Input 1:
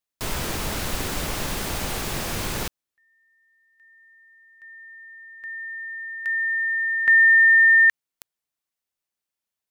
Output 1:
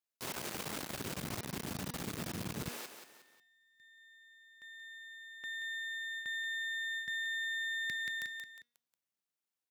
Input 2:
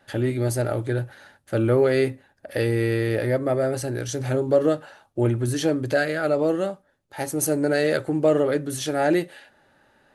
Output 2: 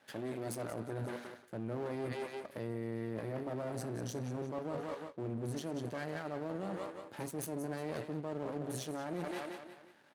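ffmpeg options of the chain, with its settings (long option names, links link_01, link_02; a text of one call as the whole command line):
ffmpeg -i in.wav -filter_complex "[0:a]acrossover=split=230[link_01][link_02];[link_01]dynaudnorm=framelen=230:gausssize=9:maxgain=15.5dB[link_03];[link_02]aecho=1:1:180|360|540|720:0.376|0.15|0.0601|0.0241[link_04];[link_03][link_04]amix=inputs=2:normalize=0,aeval=exprs='max(val(0),0)':channel_layout=same,highpass=170,bandreject=frequency=239.3:width_type=h:width=4,bandreject=frequency=478.6:width_type=h:width=4,bandreject=frequency=717.9:width_type=h:width=4,bandreject=frequency=957.2:width_type=h:width=4,bandreject=frequency=1196.5:width_type=h:width=4,bandreject=frequency=1435.8:width_type=h:width=4,bandreject=frequency=1675.1:width_type=h:width=4,bandreject=frequency=1914.4:width_type=h:width=4,bandreject=frequency=2153.7:width_type=h:width=4,bandreject=frequency=2393:width_type=h:width=4,bandreject=frequency=2632.3:width_type=h:width=4,bandreject=frequency=2871.6:width_type=h:width=4,bandreject=frequency=3110.9:width_type=h:width=4,bandreject=frequency=3350.2:width_type=h:width=4,bandreject=frequency=3589.5:width_type=h:width=4,bandreject=frequency=3828.8:width_type=h:width=4,bandreject=frequency=4068.1:width_type=h:width=4,bandreject=frequency=4307.4:width_type=h:width=4,bandreject=frequency=4546.7:width_type=h:width=4,bandreject=frequency=4786:width_type=h:width=4,bandreject=frequency=5025.3:width_type=h:width=4,bandreject=frequency=5264.6:width_type=h:width=4,bandreject=frequency=5503.9:width_type=h:width=4,bandreject=frequency=5743.2:width_type=h:width=4,bandreject=frequency=5982.5:width_type=h:width=4,areverse,acompressor=threshold=-33dB:ratio=10:attack=4.8:release=143:knee=1:detection=rms,areverse,volume=-2dB" out.wav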